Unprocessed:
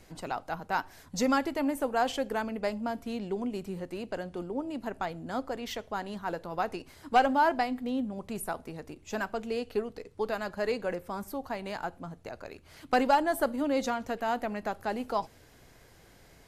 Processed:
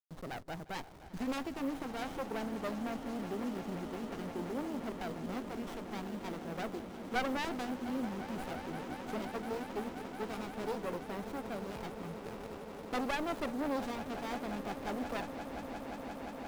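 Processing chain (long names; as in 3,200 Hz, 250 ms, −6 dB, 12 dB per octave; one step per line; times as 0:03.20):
hold until the input has moved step −45 dBFS
auto-filter notch square 0.47 Hz 580–2,400 Hz
asymmetric clip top −34 dBFS
echo that builds up and dies away 175 ms, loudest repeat 8, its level −16 dB
windowed peak hold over 17 samples
level −2.5 dB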